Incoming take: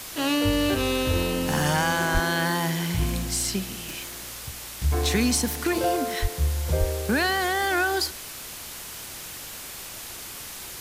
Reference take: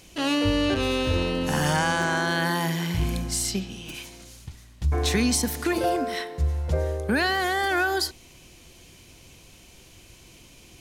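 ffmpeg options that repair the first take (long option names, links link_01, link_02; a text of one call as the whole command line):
ffmpeg -i in.wav -filter_complex "[0:a]asplit=3[link_01][link_02][link_03];[link_01]afade=type=out:start_time=2.13:duration=0.02[link_04];[link_02]highpass=frequency=140:width=0.5412,highpass=frequency=140:width=1.3066,afade=type=in:start_time=2.13:duration=0.02,afade=type=out:start_time=2.25:duration=0.02[link_05];[link_03]afade=type=in:start_time=2.25:duration=0.02[link_06];[link_04][link_05][link_06]amix=inputs=3:normalize=0,asplit=3[link_07][link_08][link_09];[link_07]afade=type=out:start_time=6.21:duration=0.02[link_10];[link_08]highpass=frequency=140:width=0.5412,highpass=frequency=140:width=1.3066,afade=type=in:start_time=6.21:duration=0.02,afade=type=out:start_time=6.33:duration=0.02[link_11];[link_09]afade=type=in:start_time=6.33:duration=0.02[link_12];[link_10][link_11][link_12]amix=inputs=3:normalize=0,asplit=3[link_13][link_14][link_15];[link_13]afade=type=out:start_time=6.79:duration=0.02[link_16];[link_14]highpass=frequency=140:width=0.5412,highpass=frequency=140:width=1.3066,afade=type=in:start_time=6.79:duration=0.02,afade=type=out:start_time=6.91:duration=0.02[link_17];[link_15]afade=type=in:start_time=6.91:duration=0.02[link_18];[link_16][link_17][link_18]amix=inputs=3:normalize=0,afwtdn=0.014" out.wav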